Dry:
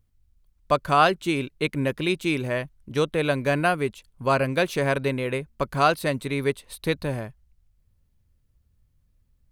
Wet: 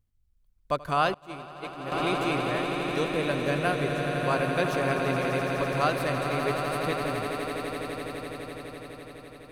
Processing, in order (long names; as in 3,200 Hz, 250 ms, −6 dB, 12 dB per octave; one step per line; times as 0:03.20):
echo that builds up and dies away 84 ms, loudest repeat 8, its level −9.5 dB
0:01.14–0:01.92: downward expander −11 dBFS
level −6.5 dB